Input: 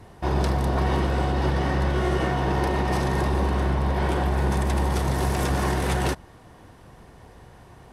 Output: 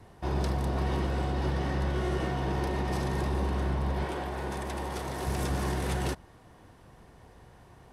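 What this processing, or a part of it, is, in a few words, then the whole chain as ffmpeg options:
one-band saturation: -filter_complex "[0:a]asettb=1/sr,asplit=3[link_01][link_02][link_03];[link_01]atrim=end=4.044[link_04];[link_02]atrim=start=4.04:end=5.27,asetpts=PTS-STARTPTS,afade=type=in:duration=0.004:curve=qsin,afade=type=out:start_time=1.226:duration=0.004:curve=qsin,bass=frequency=250:gain=-9,treble=frequency=4000:gain=-2[link_05];[link_03]atrim=start=5.266[link_06];[link_04][link_05]acrossfade=duration=0.004:curve1=hsin:curve2=qsin[link_07];[link_07][link_06]acrossfade=duration=0.004:curve1=qsin:curve2=hsin,acrossover=split=500|3000[link_08][link_09][link_10];[link_09]asoftclip=type=tanh:threshold=-27.5dB[link_11];[link_08][link_11][link_10]amix=inputs=3:normalize=0,volume=-6dB"

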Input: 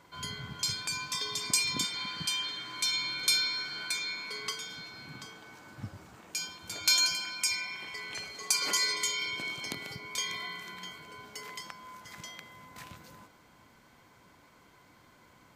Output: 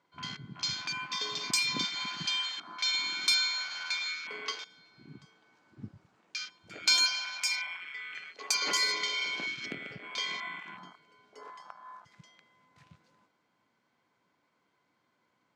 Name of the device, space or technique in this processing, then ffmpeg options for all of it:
over-cleaned archive recording: -af "highpass=160,lowpass=5800,afwtdn=0.00891,volume=2dB"

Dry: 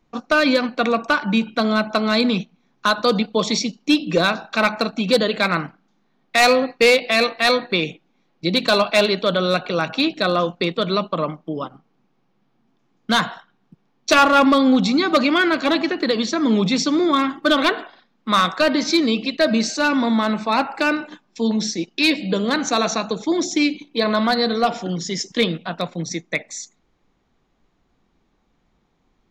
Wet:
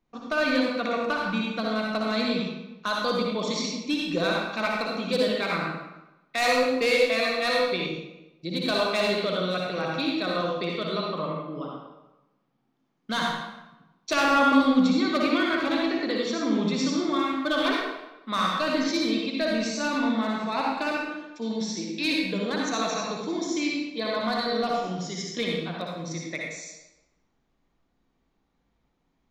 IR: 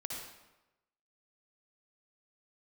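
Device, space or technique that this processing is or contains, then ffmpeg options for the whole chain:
bathroom: -filter_complex "[1:a]atrim=start_sample=2205[link_01];[0:a][link_01]afir=irnorm=-1:irlink=0,asettb=1/sr,asplit=3[link_02][link_03][link_04];[link_02]atrim=end=7.864[link_05];[link_03]atrim=start=7.86:end=8.67,asetpts=PTS-STARTPTS,afade=type=in:duration=0.004:curve=qsin,afade=type=out:start_time=0.806:duration=0.004:curve=qsin,equalizer=frequency=1600:width=0.5:gain=-5.5[link_06];[link_04]atrim=start=8.666[link_07];[link_05][link_06]acrossfade=duration=0.004:curve1=hsin:curve2=qsin[link_08];[link_08][link_07]acrossfade=duration=0.004:curve1=qsin:curve2=hsin,volume=-7.5dB"

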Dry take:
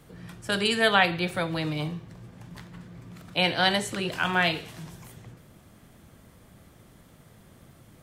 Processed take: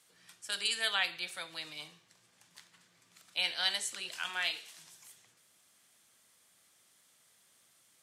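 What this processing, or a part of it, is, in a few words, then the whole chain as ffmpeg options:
piezo pickup straight into a mixer: -filter_complex "[0:a]asettb=1/sr,asplit=3[link_01][link_02][link_03];[link_01]atrim=end=4.294[link_04];[link_02]atrim=start=4.29:end=4.76,asetpts=PTS-STARTPTS,afade=type=in:duration=0.004:curve=qsin,afade=type=out:start_time=0.466:duration=0.004:curve=qsin,highpass=200[link_05];[link_03]atrim=start=4.756[link_06];[link_04][link_05]acrossfade=duration=0.004:curve1=hsin:curve2=qsin[link_07];[link_07][link_06]acrossfade=duration=0.004:curve1=qsin:curve2=hsin,lowpass=8500,aderivative,volume=1.5dB"

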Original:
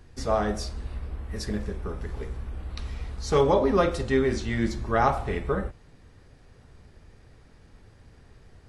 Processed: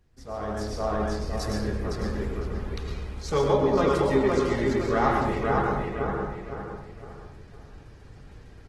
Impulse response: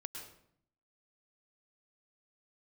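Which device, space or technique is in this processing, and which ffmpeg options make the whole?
speakerphone in a meeting room: -filter_complex "[0:a]asplit=2[link_01][link_02];[link_02]adelay=510,lowpass=frequency=3900:poles=1,volume=-3dB,asplit=2[link_03][link_04];[link_04]adelay=510,lowpass=frequency=3900:poles=1,volume=0.36,asplit=2[link_05][link_06];[link_06]adelay=510,lowpass=frequency=3900:poles=1,volume=0.36,asplit=2[link_07][link_08];[link_08]adelay=510,lowpass=frequency=3900:poles=1,volume=0.36,asplit=2[link_09][link_10];[link_10]adelay=510,lowpass=frequency=3900:poles=1,volume=0.36[link_11];[link_01][link_03][link_05][link_07][link_09][link_11]amix=inputs=6:normalize=0[link_12];[1:a]atrim=start_sample=2205[link_13];[link_12][link_13]afir=irnorm=-1:irlink=0,asplit=2[link_14][link_15];[link_15]adelay=90,highpass=300,lowpass=3400,asoftclip=type=hard:threshold=-20.5dB,volume=-13dB[link_16];[link_14][link_16]amix=inputs=2:normalize=0,dynaudnorm=framelen=170:gausssize=7:maxgain=13.5dB,volume=-8.5dB" -ar 48000 -c:a libopus -b:a 16k

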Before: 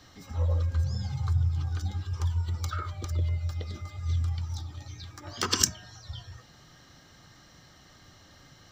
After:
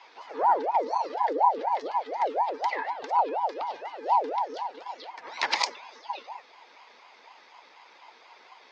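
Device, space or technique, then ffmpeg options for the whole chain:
voice changer toy: -af "aeval=exprs='val(0)*sin(2*PI*630*n/s+630*0.45/4.1*sin(2*PI*4.1*n/s))':channel_layout=same,highpass=550,equalizer=frequency=630:width_type=q:width=4:gain=-4,equalizer=frequency=930:width_type=q:width=4:gain=8,equalizer=frequency=2100:width_type=q:width=4:gain=6,lowpass=frequency=4700:width=0.5412,lowpass=frequency=4700:width=1.3066,volume=4dB"

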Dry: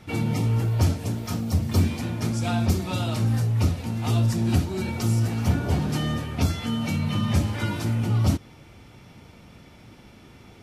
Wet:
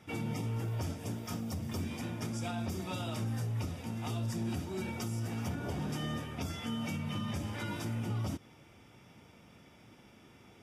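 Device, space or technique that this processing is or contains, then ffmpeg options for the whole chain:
PA system with an anti-feedback notch: -af "highpass=frequency=140:poles=1,asuperstop=centerf=4200:order=8:qfactor=7.9,alimiter=limit=-20dB:level=0:latency=1:release=96,volume=-7.5dB"

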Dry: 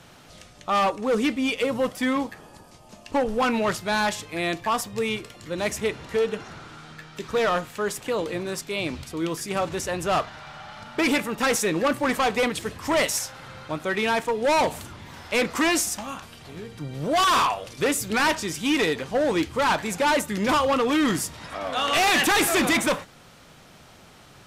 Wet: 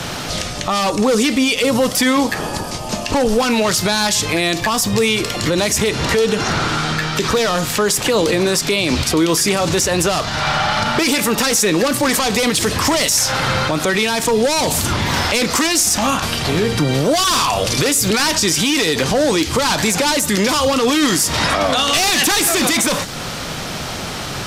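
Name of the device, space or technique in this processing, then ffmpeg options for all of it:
mastering chain: -filter_complex "[0:a]equalizer=frequency=5000:width_type=o:width=0.94:gain=4,acrossover=split=280|4000[link_01][link_02][link_03];[link_01]acompressor=threshold=-41dB:ratio=4[link_04];[link_02]acompressor=threshold=-34dB:ratio=4[link_05];[link_03]acompressor=threshold=-30dB:ratio=4[link_06];[link_04][link_05][link_06]amix=inputs=3:normalize=0,acompressor=threshold=-31dB:ratio=2,asoftclip=type=tanh:threshold=-21dB,alimiter=level_in=30.5dB:limit=-1dB:release=50:level=0:latency=1,volume=-6.5dB"

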